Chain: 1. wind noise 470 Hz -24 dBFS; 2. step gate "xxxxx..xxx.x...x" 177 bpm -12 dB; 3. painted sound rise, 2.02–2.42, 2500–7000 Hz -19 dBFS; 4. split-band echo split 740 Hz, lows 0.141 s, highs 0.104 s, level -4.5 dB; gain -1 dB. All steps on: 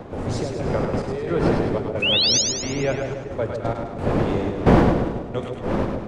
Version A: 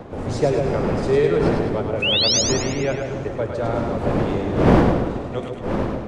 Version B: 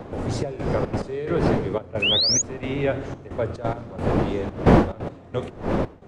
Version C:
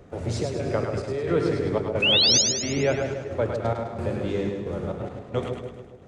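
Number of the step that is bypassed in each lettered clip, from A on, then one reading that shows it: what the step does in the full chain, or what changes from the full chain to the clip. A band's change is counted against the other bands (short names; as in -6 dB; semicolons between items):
2, 500 Hz band +2.0 dB; 4, echo-to-direct -3.0 dB to none; 1, 1 kHz band -5.0 dB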